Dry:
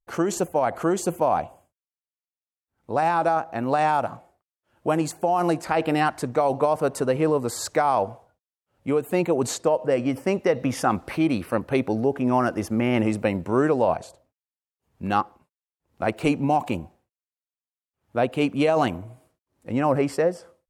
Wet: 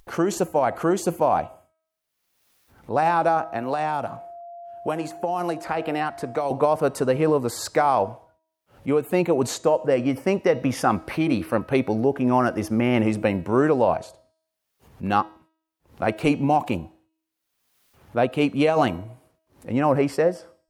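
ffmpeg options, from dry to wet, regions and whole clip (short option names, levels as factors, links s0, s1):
-filter_complex "[0:a]asettb=1/sr,asplit=3[s0][s1][s2];[s0]atrim=end=3.424[s3];[s1]atrim=start=3.42:end=6.51,asetpts=PTS-STARTPTS,afade=t=in:d=0.004:c=qsin,afade=t=out:st=3.086:d=0.004:c=qsin,acrossover=split=350|2600[s4][s5][s6];[s4]acompressor=threshold=0.0158:ratio=4[s7];[s5]acompressor=threshold=0.0562:ratio=4[s8];[s6]acompressor=threshold=0.00631:ratio=4[s9];[s7][s8][s9]amix=inputs=3:normalize=0,aeval=exprs='val(0)+0.0112*sin(2*PI*690*n/s)':c=same[s10];[s2]atrim=start=6.506[s11];[s3][s10]acrossfade=d=0.004:c1=hsin:c2=qsin[s12];[s12][s11]acrossfade=d=0.004:c1=qsin:c2=hsin,equalizer=f=7700:t=o:w=0.49:g=-4,bandreject=f=320:t=h:w=4,bandreject=f=640:t=h:w=4,bandreject=f=960:t=h:w=4,bandreject=f=1280:t=h:w=4,bandreject=f=1600:t=h:w=4,bandreject=f=1920:t=h:w=4,bandreject=f=2240:t=h:w=4,bandreject=f=2560:t=h:w=4,bandreject=f=2880:t=h:w=4,bandreject=f=3200:t=h:w=4,bandreject=f=3520:t=h:w=4,bandreject=f=3840:t=h:w=4,bandreject=f=4160:t=h:w=4,bandreject=f=4480:t=h:w=4,bandreject=f=4800:t=h:w=4,bandreject=f=5120:t=h:w=4,bandreject=f=5440:t=h:w=4,bandreject=f=5760:t=h:w=4,bandreject=f=6080:t=h:w=4,bandreject=f=6400:t=h:w=4,bandreject=f=6720:t=h:w=4,bandreject=f=7040:t=h:w=4,bandreject=f=7360:t=h:w=4,bandreject=f=7680:t=h:w=4,bandreject=f=8000:t=h:w=4,bandreject=f=8320:t=h:w=4,bandreject=f=8640:t=h:w=4,bandreject=f=8960:t=h:w=4,bandreject=f=9280:t=h:w=4,bandreject=f=9600:t=h:w=4,acompressor=mode=upward:threshold=0.01:ratio=2.5,volume=1.19"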